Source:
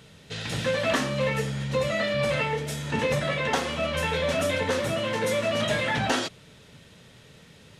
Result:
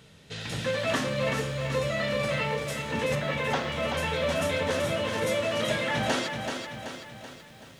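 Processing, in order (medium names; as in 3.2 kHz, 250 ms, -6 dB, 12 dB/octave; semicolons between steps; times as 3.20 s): 3.15–3.72 s: low-pass 4.5 kHz 12 dB/octave; bit-crushed delay 381 ms, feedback 55%, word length 9-bit, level -6 dB; trim -3 dB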